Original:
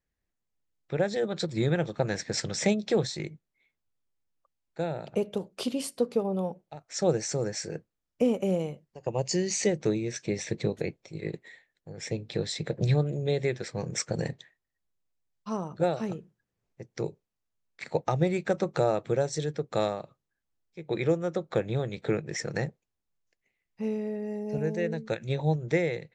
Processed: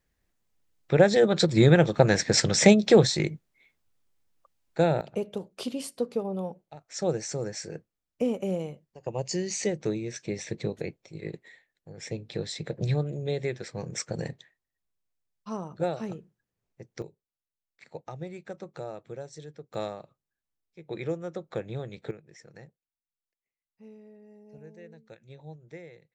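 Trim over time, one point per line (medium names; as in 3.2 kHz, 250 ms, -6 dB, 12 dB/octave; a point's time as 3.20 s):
+8.5 dB
from 5.01 s -2.5 dB
from 17.02 s -13 dB
from 19.74 s -6 dB
from 22.11 s -18.5 dB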